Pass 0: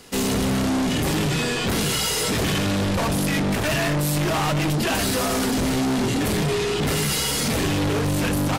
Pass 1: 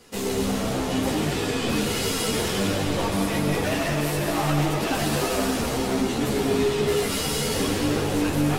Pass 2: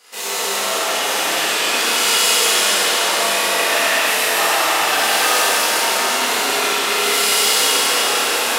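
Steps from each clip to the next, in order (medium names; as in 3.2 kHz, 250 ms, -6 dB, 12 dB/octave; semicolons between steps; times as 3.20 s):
peaking EQ 480 Hz +4.5 dB 1.6 oct; reverberation RT60 2.8 s, pre-delay 101 ms, DRR 0 dB; three-phase chorus; trim -3.5 dB
high-pass 910 Hz 12 dB/octave; on a send: echo whose repeats swap between lows and highs 188 ms, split 1.6 kHz, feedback 89%, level -12 dB; on the sum: Schroeder reverb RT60 2.9 s, combs from 25 ms, DRR -9.5 dB; trim +3.5 dB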